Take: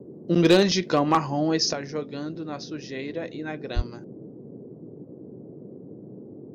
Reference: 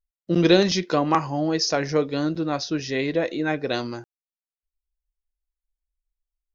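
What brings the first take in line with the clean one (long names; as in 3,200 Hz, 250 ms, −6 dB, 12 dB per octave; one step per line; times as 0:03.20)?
clipped peaks rebuilt −10 dBFS
high-pass at the plosives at 0:03.75
noise reduction from a noise print 30 dB
level 0 dB, from 0:01.73 +9 dB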